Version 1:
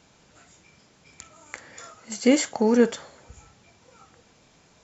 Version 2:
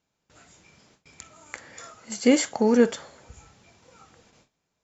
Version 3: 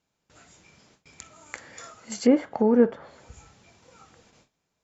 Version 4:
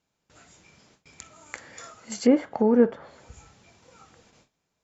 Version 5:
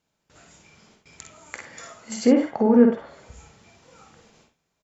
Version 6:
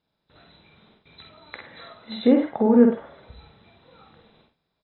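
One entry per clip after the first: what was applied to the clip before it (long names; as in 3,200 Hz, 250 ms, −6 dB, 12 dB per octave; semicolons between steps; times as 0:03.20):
noise gate with hold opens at −47 dBFS
treble cut that deepens with the level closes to 1,200 Hz, closed at −20 dBFS
no processing that can be heard
ambience of single reflections 50 ms −8.5 dB, 63 ms −9 dB; on a send at −7 dB: convolution reverb, pre-delay 45 ms; on the sum: level +1 dB
hearing-aid frequency compression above 3,300 Hz 4 to 1; high-shelf EQ 3,100 Hz −9 dB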